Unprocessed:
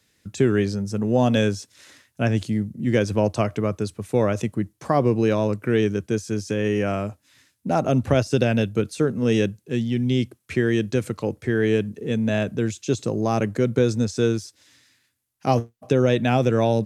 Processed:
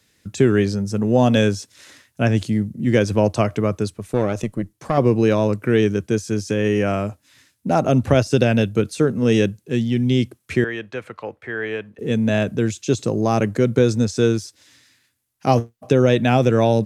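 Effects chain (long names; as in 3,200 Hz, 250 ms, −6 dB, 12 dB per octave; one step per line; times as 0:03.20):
0:03.89–0:04.98: tube saturation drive 14 dB, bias 0.65
0:10.64–0:11.99: three-way crossover with the lows and the highs turned down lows −17 dB, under 590 Hz, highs −20 dB, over 2,900 Hz
level +3.5 dB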